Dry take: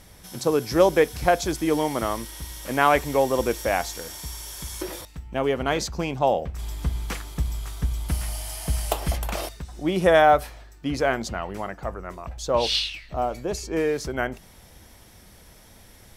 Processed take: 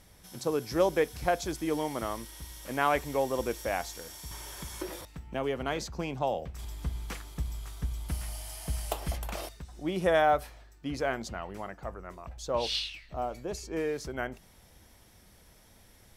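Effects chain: 4.31–6.65 three-band squash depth 40%; gain -8 dB

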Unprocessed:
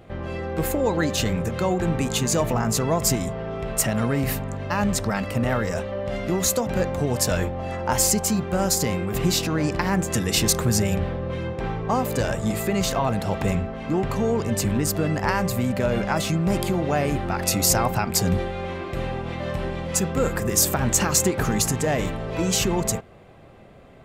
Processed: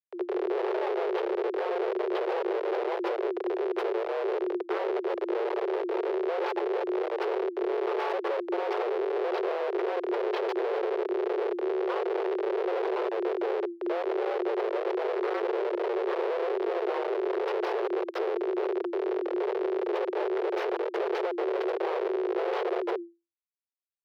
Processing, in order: bell 7300 Hz -14.5 dB 0.3 oct; compressor 4:1, threshold -24 dBFS, peak gain reduction 7.5 dB; band-limited delay 0.82 s, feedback 68%, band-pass 510 Hz, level -20 dB; Schmitt trigger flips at -24 dBFS; air absorption 370 m; frequency shift +340 Hz

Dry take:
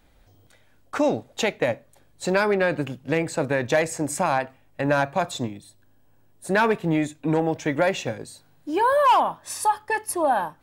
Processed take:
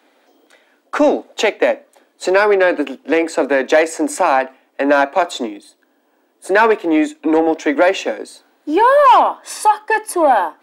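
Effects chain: steep high-pass 260 Hz 48 dB/oct; high shelf 5600 Hz -9 dB; in parallel at -6 dB: soft clip -18.5 dBFS, distortion -13 dB; on the sum: gain +6.5 dB

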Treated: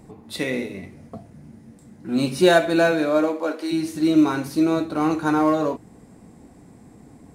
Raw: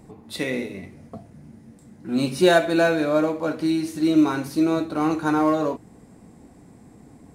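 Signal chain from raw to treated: 2.91–3.71 HPF 130 Hz -> 390 Hz 24 dB/oct; gain +1 dB

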